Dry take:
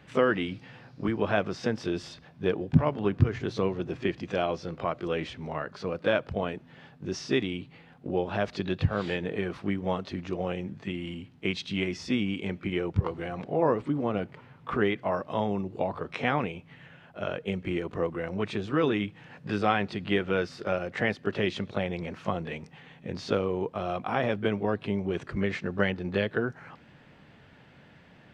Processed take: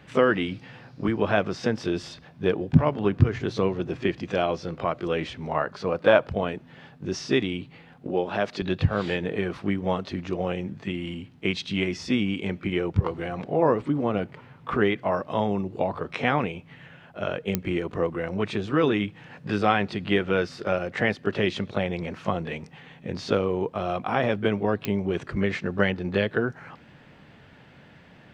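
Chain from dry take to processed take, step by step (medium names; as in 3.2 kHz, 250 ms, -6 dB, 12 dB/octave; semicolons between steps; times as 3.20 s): 5.34–6.27 s: dynamic bell 850 Hz, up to +8 dB, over -40 dBFS, Q 1; 8.07–8.62 s: Bessel high-pass 190 Hz, order 2; clicks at 17.55/24.85 s, -12 dBFS; trim +3.5 dB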